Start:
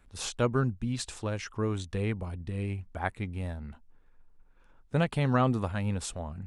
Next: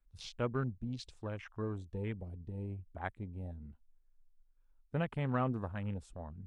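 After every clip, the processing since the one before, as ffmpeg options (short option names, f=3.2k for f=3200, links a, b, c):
-af "afwtdn=0.01,volume=-8dB"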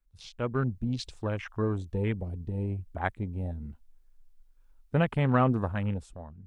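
-af "dynaudnorm=f=100:g=11:m=10.5dB,volume=-1dB"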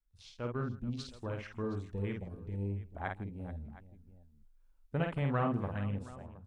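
-af "aecho=1:1:50|159|433|717:0.631|0.106|0.141|0.119,volume=-8.5dB"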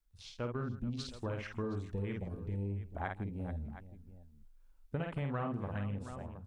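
-af "acompressor=threshold=-37dB:ratio=6,volume=3.5dB"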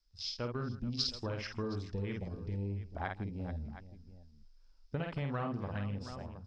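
-af "lowpass=f=5.1k:t=q:w=11"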